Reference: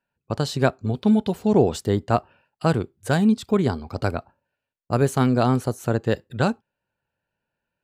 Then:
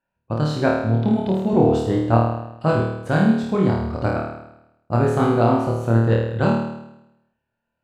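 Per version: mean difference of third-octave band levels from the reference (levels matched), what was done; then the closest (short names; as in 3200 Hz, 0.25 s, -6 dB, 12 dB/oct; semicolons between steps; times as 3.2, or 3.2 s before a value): 7.5 dB: LPF 1800 Hz 6 dB/oct; notch 430 Hz, Q 12; flutter echo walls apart 4.5 m, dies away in 0.87 s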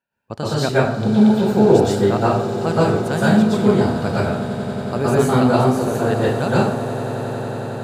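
10.0 dB: low shelf 76 Hz -9 dB; on a send: swelling echo 91 ms, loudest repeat 8, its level -18 dB; on the sum: plate-style reverb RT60 0.59 s, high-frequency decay 0.75×, pre-delay 0.105 s, DRR -7.5 dB; gain -3 dB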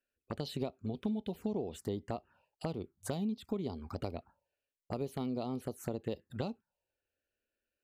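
4.0 dB: bell 120 Hz -8 dB 0.6 oct; compressor 12:1, threshold -27 dBFS, peak gain reduction 15.5 dB; envelope phaser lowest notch 160 Hz, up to 1600 Hz, full sweep at -28.5 dBFS; gain -4.5 dB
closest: third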